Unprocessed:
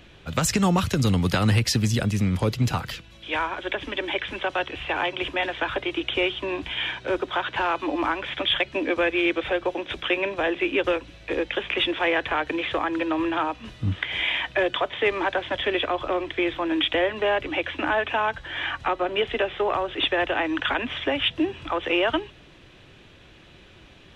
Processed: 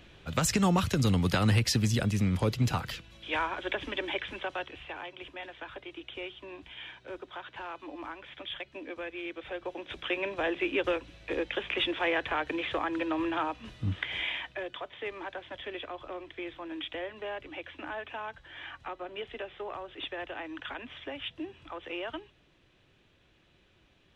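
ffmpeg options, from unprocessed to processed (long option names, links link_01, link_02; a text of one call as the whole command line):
ffmpeg -i in.wav -af "volume=6dB,afade=type=out:start_time=3.86:duration=1.17:silence=0.251189,afade=type=in:start_time=9.34:duration=1.1:silence=0.298538,afade=type=out:start_time=14.08:duration=0.52:silence=0.354813" out.wav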